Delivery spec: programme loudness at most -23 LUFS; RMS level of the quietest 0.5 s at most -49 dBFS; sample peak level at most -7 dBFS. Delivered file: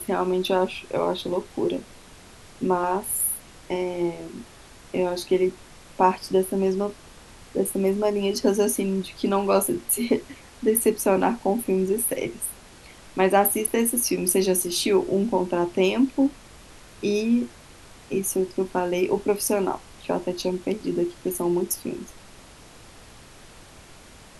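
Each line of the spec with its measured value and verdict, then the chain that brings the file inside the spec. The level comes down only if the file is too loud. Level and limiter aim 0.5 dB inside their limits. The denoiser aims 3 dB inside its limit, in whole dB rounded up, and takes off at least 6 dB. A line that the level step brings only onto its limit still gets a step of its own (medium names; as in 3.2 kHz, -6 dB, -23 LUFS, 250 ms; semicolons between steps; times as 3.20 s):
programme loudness -24.0 LUFS: pass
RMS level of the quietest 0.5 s -47 dBFS: fail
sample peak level -4.5 dBFS: fail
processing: noise reduction 6 dB, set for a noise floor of -47 dBFS; peak limiter -7.5 dBFS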